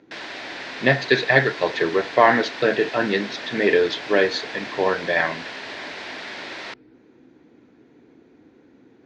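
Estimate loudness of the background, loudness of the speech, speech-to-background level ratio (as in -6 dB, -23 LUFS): -33.0 LUFS, -20.5 LUFS, 12.5 dB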